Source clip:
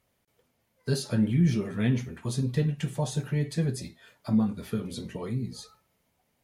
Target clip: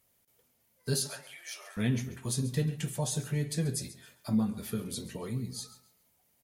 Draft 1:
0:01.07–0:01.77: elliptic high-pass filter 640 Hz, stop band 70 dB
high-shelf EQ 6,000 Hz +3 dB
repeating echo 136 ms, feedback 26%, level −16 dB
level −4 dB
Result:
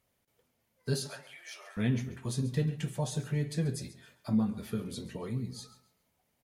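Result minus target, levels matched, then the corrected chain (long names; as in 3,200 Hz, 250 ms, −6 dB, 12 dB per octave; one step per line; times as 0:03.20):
8,000 Hz band −7.0 dB
0:01.07–0:01.77: elliptic high-pass filter 640 Hz, stop band 70 dB
high-shelf EQ 6,000 Hz +15 dB
repeating echo 136 ms, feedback 26%, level −16 dB
level −4 dB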